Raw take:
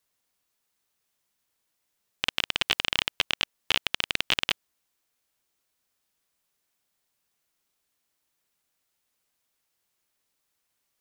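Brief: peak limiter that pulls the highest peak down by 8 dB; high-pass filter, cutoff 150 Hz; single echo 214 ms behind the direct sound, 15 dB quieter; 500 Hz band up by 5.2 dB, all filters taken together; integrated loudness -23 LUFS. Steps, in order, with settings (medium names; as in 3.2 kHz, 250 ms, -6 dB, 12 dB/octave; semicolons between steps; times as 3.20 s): high-pass 150 Hz; peaking EQ 500 Hz +6.5 dB; peak limiter -12.5 dBFS; delay 214 ms -15 dB; trim +11.5 dB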